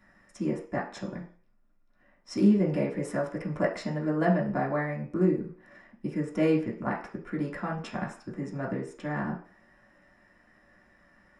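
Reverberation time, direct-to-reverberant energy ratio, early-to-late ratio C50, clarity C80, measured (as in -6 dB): 0.45 s, -4.5 dB, 8.5 dB, 13.5 dB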